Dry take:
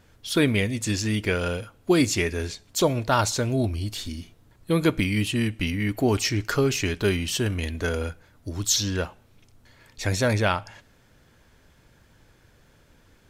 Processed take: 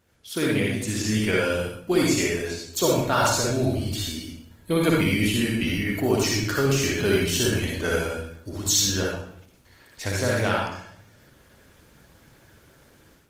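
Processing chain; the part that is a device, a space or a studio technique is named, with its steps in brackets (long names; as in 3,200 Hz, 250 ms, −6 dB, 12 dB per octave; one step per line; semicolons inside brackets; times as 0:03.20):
high-shelf EQ 9,600 Hz +5.5 dB
far-field microphone of a smart speaker (convolution reverb RT60 0.65 s, pre-delay 50 ms, DRR −2.5 dB; high-pass filter 100 Hz 6 dB per octave; automatic gain control gain up to 10 dB; level −7.5 dB; Opus 20 kbit/s 48,000 Hz)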